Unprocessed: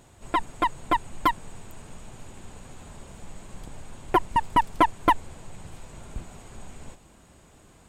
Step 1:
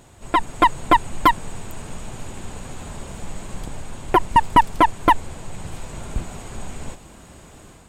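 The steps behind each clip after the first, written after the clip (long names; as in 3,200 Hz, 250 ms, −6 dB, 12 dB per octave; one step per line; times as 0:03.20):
automatic gain control gain up to 5 dB
boost into a limiter +7 dB
level −2 dB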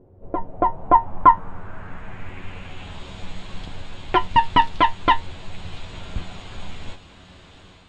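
parametric band 370 Hz −3.5 dB 2.7 octaves
tuned comb filter 92 Hz, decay 0.16 s, harmonics all, mix 80%
low-pass filter sweep 440 Hz → 3,700 Hz, 0:00.06–0:03.05
level +4 dB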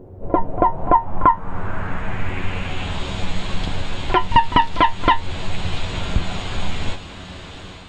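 downward compressor 3 to 1, threshold −23 dBFS, peak gain reduction 12.5 dB
backwards echo 43 ms −18 dB
boost into a limiter +12 dB
level −1 dB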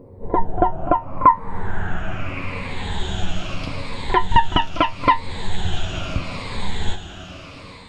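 rippled gain that drifts along the octave scale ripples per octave 0.95, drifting −0.78 Hz, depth 11 dB
level −2.5 dB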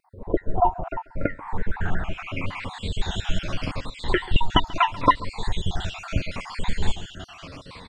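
time-frequency cells dropped at random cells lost 48%
pitch vibrato 5.7 Hz 50 cents
single-tap delay 137 ms −21 dB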